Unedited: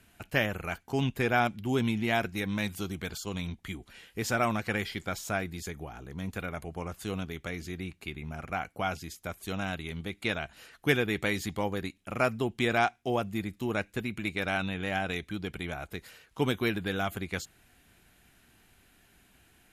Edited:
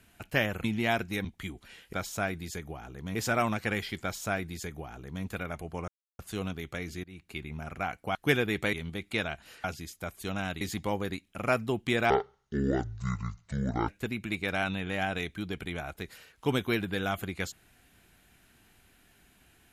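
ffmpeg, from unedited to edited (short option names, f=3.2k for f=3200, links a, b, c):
-filter_complex "[0:a]asplit=13[a][b][c][d][e][f][g][h][i][j][k][l][m];[a]atrim=end=0.642[n];[b]atrim=start=1.878:end=2.492[o];[c]atrim=start=3.498:end=4.182[p];[d]atrim=start=5.048:end=6.272[q];[e]atrim=start=4.178:end=6.91,asetpts=PTS-STARTPTS,afade=t=out:st=2.728:d=0.004:c=hsin,apad=pad_dur=0.31[r];[f]atrim=start=6.91:end=7.76,asetpts=PTS-STARTPTS,afade=t=in:d=0.004:c=hsin,afade=t=out:st=0.846:d=0.004:c=hsin:silence=0.0891251[s];[g]atrim=start=7.76:end=8.872,asetpts=PTS-STARTPTS,afade=t=in:d=0.33:silence=0.0891251[t];[h]atrim=start=10.748:end=11.332[u];[i]atrim=start=9.838:end=10.752[v];[j]atrim=start=8.868:end=9.842[w];[k]atrim=start=11.328:end=12.824[x];[l]atrim=start=12.82:end=13.82,asetpts=PTS-STARTPTS,asetrate=24696,aresample=44100[y];[m]atrim=start=13.816[z];[n][o]acrossfade=d=0.004:c1=hsin:c2=hsin[aa];[aa][p]acrossfade=d=0.004:c1=hsin:c2=hsin[ab];[ab][q]acrossfade=d=0.004:c1=hsin:c2=hsin[ac];[r][s][t]concat=n=3:v=0:a=1[ad];[ac][ad]acrossfade=d=0.004:c1=hsin:c2=hsin[ae];[ae][u]acrossfade=d=0.004:c1=hsin:c2=hsin[af];[af][v]acrossfade=d=0.004:c1=hsin:c2=hsin[ag];[ag][w]acrossfade=d=0.004:c1=hsin:c2=hsin[ah];[ah][x]acrossfade=d=0.004:c1=hsin:c2=hsin[ai];[ai][y]acrossfade=d=0.004:c1=hsin:c2=hsin[aj];[aj][z]acrossfade=d=0.004:c1=hsin:c2=hsin"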